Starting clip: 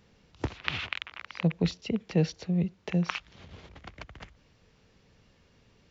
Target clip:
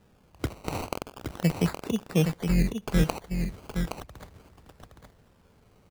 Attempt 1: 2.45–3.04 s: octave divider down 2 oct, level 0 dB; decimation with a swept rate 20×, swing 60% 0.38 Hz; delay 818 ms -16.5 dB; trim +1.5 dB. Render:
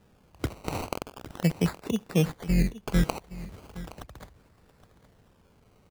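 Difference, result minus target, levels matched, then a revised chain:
echo-to-direct -10.5 dB
2.45–3.04 s: octave divider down 2 oct, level 0 dB; decimation with a swept rate 20×, swing 60% 0.38 Hz; delay 818 ms -6 dB; trim +1.5 dB

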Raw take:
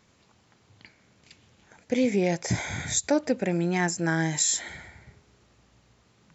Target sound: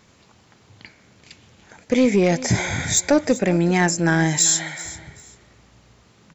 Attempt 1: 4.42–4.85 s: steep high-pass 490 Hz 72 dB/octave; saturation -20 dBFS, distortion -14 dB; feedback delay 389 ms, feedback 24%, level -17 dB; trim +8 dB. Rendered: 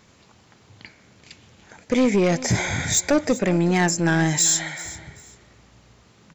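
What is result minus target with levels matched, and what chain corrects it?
saturation: distortion +8 dB
4.42–4.85 s: steep high-pass 490 Hz 72 dB/octave; saturation -14 dBFS, distortion -22 dB; feedback delay 389 ms, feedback 24%, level -17 dB; trim +8 dB

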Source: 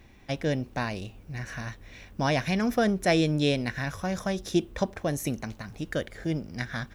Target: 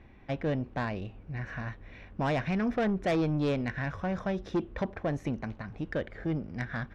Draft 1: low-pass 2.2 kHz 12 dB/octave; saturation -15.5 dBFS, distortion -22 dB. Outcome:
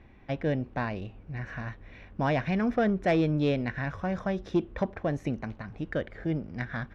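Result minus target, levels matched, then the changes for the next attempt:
saturation: distortion -10 dB
change: saturation -23 dBFS, distortion -12 dB

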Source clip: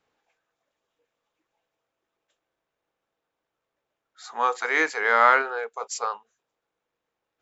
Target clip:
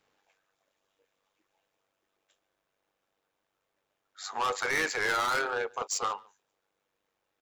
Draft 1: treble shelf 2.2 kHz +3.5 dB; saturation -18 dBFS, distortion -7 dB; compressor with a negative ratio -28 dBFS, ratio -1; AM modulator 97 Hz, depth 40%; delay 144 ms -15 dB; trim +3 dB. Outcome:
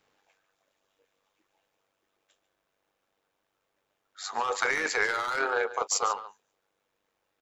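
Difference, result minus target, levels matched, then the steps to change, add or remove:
echo-to-direct +11 dB; saturation: distortion -4 dB
change: saturation -25.5 dBFS, distortion -3 dB; change: delay 144 ms -26 dB

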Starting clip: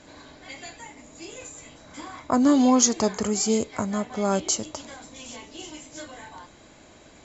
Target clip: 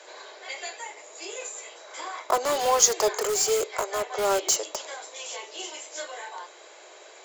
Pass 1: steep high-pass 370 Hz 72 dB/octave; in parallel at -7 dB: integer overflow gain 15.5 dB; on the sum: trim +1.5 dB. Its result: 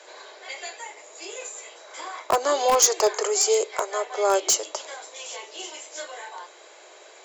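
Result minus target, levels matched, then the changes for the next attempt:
integer overflow: distortion -20 dB
change: integer overflow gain 25 dB

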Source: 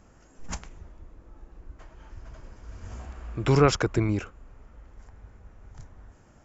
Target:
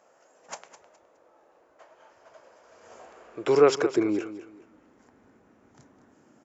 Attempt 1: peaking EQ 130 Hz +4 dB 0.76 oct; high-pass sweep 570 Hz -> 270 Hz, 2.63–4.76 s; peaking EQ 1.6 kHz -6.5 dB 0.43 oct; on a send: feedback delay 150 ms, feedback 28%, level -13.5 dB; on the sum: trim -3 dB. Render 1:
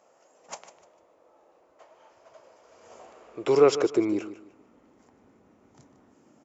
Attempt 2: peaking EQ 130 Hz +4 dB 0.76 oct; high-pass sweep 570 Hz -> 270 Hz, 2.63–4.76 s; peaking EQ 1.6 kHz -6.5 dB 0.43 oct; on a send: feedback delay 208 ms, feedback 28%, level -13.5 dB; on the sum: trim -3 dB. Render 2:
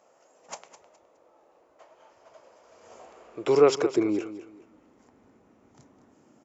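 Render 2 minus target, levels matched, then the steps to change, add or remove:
2 kHz band -3.0 dB
remove: second peaking EQ 1.6 kHz -6.5 dB 0.43 oct

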